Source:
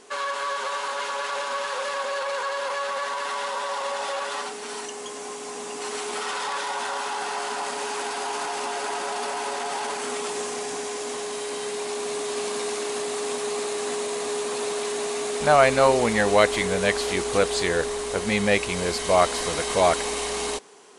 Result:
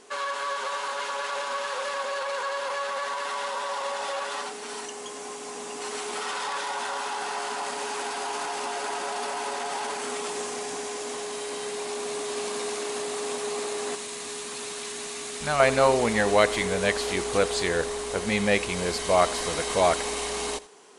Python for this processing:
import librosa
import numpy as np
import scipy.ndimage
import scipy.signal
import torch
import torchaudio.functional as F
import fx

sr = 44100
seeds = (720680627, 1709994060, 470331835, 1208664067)

y = fx.peak_eq(x, sr, hz=560.0, db=-10.5, octaves=2.0, at=(13.95, 15.6))
y = y + 10.0 ** (-18.5 / 20.0) * np.pad(y, (int(83 * sr / 1000.0), 0))[:len(y)]
y = F.gain(torch.from_numpy(y), -2.0).numpy()